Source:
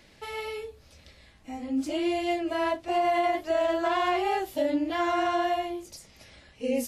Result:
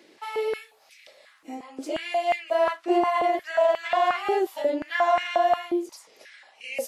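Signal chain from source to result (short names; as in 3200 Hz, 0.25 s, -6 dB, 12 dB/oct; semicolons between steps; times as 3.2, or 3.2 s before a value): 0.54–1.55 high shelf 11000 Hz +9 dB; stepped high-pass 5.6 Hz 340–2200 Hz; gain -1 dB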